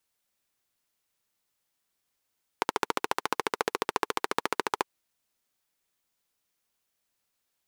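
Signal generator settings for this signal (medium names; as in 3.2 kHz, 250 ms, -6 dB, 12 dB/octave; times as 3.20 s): single-cylinder engine model, steady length 2.23 s, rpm 1700, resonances 440/920 Hz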